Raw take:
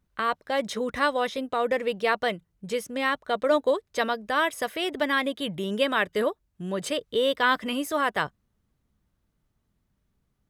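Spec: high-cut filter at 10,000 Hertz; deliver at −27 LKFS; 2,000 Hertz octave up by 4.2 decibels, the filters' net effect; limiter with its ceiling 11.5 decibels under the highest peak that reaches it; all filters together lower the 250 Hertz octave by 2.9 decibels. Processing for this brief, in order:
low-pass filter 10,000 Hz
parametric band 250 Hz −3.5 dB
parametric band 2,000 Hz +5.5 dB
level +2.5 dB
brickwall limiter −16 dBFS

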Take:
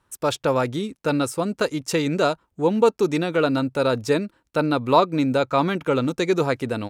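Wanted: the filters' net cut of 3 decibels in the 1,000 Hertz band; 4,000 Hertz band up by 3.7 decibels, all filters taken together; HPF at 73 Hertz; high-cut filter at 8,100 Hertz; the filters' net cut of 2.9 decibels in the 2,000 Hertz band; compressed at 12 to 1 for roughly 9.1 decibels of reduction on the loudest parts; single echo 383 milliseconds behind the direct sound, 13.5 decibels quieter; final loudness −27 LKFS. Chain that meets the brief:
high-pass filter 73 Hz
low-pass filter 8,100 Hz
parametric band 1,000 Hz −3 dB
parametric band 2,000 Hz −4.5 dB
parametric band 4,000 Hz +5.5 dB
downward compressor 12 to 1, threshold −21 dBFS
single-tap delay 383 ms −13.5 dB

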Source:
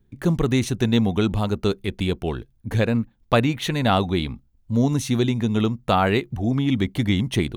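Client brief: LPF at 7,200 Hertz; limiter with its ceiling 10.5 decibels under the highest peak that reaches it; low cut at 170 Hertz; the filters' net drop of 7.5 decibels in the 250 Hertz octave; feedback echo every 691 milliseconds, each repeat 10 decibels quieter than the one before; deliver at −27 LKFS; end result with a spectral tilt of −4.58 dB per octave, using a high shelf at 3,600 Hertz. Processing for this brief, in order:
high-pass filter 170 Hz
low-pass filter 7,200 Hz
parametric band 250 Hz −8 dB
high-shelf EQ 3,600 Hz −3.5 dB
brickwall limiter −15 dBFS
repeating echo 691 ms, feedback 32%, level −10 dB
level +2 dB

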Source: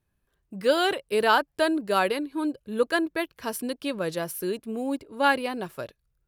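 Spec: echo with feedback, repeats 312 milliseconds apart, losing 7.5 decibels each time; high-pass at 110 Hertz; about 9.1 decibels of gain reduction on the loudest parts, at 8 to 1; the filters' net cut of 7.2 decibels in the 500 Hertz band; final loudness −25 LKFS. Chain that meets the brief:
high-pass filter 110 Hz
parametric band 500 Hz −9 dB
downward compressor 8 to 1, threshold −27 dBFS
repeating echo 312 ms, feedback 42%, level −7.5 dB
level +8 dB

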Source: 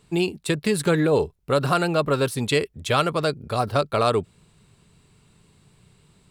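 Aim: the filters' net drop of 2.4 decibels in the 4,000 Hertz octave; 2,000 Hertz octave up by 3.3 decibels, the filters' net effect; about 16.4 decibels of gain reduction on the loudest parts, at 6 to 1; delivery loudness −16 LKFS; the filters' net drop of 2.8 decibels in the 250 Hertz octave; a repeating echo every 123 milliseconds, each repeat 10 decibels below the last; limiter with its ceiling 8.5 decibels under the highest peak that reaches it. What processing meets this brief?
parametric band 250 Hz −4.5 dB
parametric band 2,000 Hz +6 dB
parametric band 4,000 Hz −5 dB
downward compressor 6 to 1, threshold −34 dBFS
brickwall limiter −29 dBFS
repeating echo 123 ms, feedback 32%, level −10 dB
level +23.5 dB

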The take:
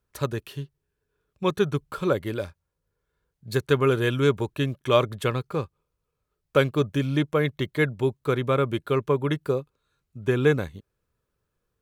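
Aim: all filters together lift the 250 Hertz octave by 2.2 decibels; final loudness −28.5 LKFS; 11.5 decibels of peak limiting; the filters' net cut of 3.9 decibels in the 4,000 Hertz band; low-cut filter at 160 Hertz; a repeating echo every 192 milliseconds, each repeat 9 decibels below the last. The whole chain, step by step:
high-pass filter 160 Hz
parametric band 250 Hz +4 dB
parametric band 4,000 Hz −5 dB
brickwall limiter −16 dBFS
repeating echo 192 ms, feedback 35%, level −9 dB

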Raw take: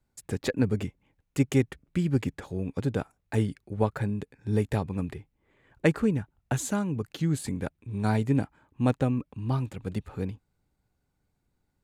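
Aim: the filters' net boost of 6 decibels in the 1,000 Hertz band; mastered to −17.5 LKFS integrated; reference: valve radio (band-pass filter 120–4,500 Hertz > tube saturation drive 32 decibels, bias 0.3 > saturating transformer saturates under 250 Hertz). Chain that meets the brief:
band-pass filter 120–4,500 Hz
parametric band 1,000 Hz +8 dB
tube saturation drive 32 dB, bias 0.3
saturating transformer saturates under 250 Hz
level +25 dB

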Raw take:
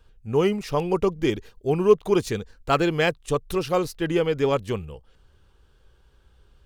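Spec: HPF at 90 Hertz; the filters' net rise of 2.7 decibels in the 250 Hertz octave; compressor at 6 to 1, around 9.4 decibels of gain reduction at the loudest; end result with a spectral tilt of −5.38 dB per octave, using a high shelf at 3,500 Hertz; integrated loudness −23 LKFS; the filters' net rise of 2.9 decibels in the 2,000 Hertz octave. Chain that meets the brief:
high-pass filter 90 Hz
parametric band 250 Hz +4.5 dB
parametric band 2,000 Hz +4.5 dB
high-shelf EQ 3,500 Hz −3 dB
downward compressor 6 to 1, threshold −19 dBFS
level +3 dB

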